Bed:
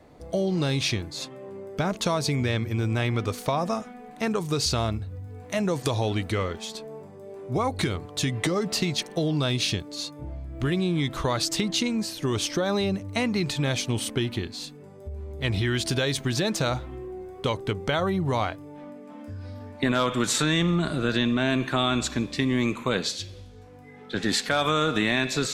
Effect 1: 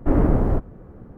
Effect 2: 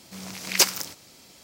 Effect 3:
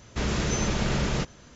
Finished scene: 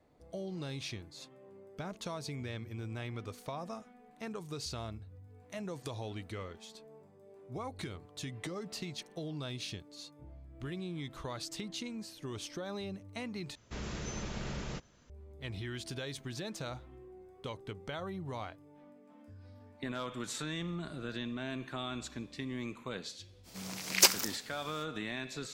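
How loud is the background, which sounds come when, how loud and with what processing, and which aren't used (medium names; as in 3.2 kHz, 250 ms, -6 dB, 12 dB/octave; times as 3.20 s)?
bed -15.5 dB
13.55 s: replace with 3 -13.5 dB
23.43 s: add 2 -4 dB, fades 0.05 s
not used: 1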